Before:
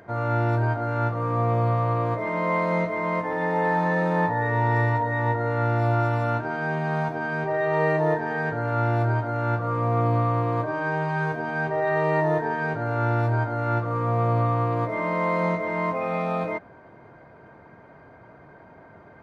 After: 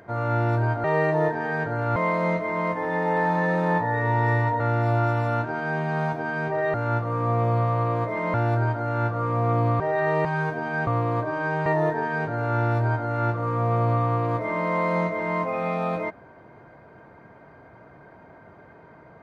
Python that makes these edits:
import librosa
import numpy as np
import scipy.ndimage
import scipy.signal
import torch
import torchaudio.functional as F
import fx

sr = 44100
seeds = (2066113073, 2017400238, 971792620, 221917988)

y = fx.edit(x, sr, fx.swap(start_s=0.84, length_s=1.6, other_s=7.7, other_length_s=1.12),
    fx.cut(start_s=5.08, length_s=0.48),
    fx.swap(start_s=10.28, length_s=0.79, other_s=11.69, other_length_s=0.45), tone=tone)